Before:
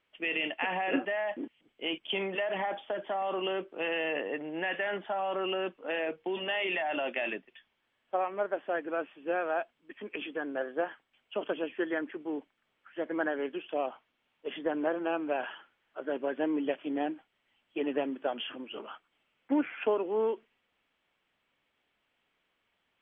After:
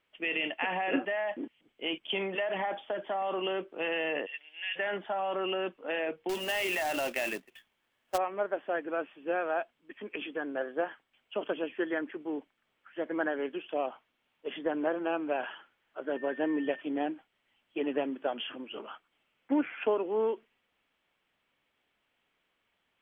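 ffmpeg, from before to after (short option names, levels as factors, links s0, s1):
-filter_complex "[0:a]asplit=3[s0][s1][s2];[s0]afade=t=out:st=4.25:d=0.02[s3];[s1]highpass=f=3000:t=q:w=2.1,afade=t=in:st=4.25:d=0.02,afade=t=out:st=4.75:d=0.02[s4];[s2]afade=t=in:st=4.75:d=0.02[s5];[s3][s4][s5]amix=inputs=3:normalize=0,asettb=1/sr,asplit=3[s6][s7][s8];[s6]atrim=end=6.294[s9];[s7]atrim=start=6.29:end=8.18,asetpts=PTS-STARTPTS,afade=t=in:d=0.004:c=qsin,afade=t=out:st=1.886:d=0.004:c=qsin,acrusher=bits=2:mode=log:mix=0:aa=0.000001[s10];[s8]atrim=start=8.176[s11];[s9][s10]acrossfade=d=0.004:c1=hsin:c2=qsin[s12];[s12][s11]acrossfade=d=0.004:c1=qsin:c2=hsin,asettb=1/sr,asplit=3[s13][s14][s15];[s13]atrim=end=16.164[s16];[s14]atrim=start=16.16:end=16.81,asetpts=PTS-STARTPTS,afade=t=in:d=0.004:c=qsin,afade=t=out:st=0.646:d=0.004:c=qsin,aeval=exprs='val(0)+0.00562*sin(2*PI*1800*n/s)':c=same[s17];[s15]atrim=start=16.806[s18];[s16][s17]acrossfade=d=0.004:c1=hsin:c2=qsin[s19];[s19][s18]acrossfade=d=0.004:c1=qsin:c2=hsin"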